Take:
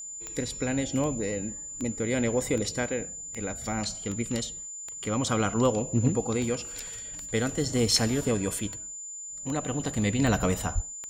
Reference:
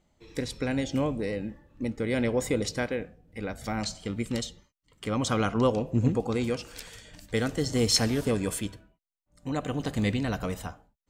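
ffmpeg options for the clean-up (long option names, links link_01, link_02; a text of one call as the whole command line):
ffmpeg -i in.wav -filter_complex "[0:a]adeclick=threshold=4,bandreject=frequency=7100:width=30,asplit=3[link_01][link_02][link_03];[link_01]afade=type=out:start_time=10.74:duration=0.02[link_04];[link_02]highpass=frequency=140:width=0.5412,highpass=frequency=140:width=1.3066,afade=type=in:start_time=10.74:duration=0.02,afade=type=out:start_time=10.86:duration=0.02[link_05];[link_03]afade=type=in:start_time=10.86:duration=0.02[link_06];[link_04][link_05][link_06]amix=inputs=3:normalize=0,asetnsamples=nb_out_samples=441:pad=0,asendcmd='10.19 volume volume -6dB',volume=0dB" out.wav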